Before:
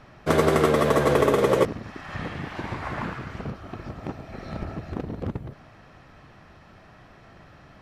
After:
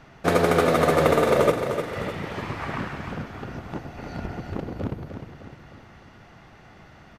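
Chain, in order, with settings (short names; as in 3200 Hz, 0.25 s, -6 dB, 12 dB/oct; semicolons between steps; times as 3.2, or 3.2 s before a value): on a send: feedback echo 0.33 s, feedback 48%, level -8 dB; on the sum: speed mistake 44.1 kHz file played as 48 kHz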